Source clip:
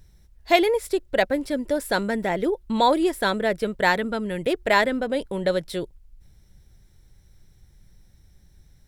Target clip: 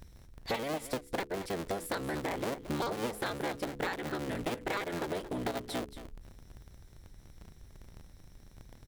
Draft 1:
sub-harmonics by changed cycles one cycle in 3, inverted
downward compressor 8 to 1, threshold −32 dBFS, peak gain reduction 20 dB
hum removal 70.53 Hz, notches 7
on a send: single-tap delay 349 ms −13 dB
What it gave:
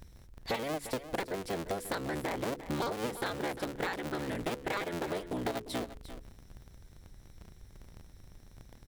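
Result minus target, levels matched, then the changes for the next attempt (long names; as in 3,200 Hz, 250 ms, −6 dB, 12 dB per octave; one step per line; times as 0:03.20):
echo 124 ms late
change: single-tap delay 225 ms −13 dB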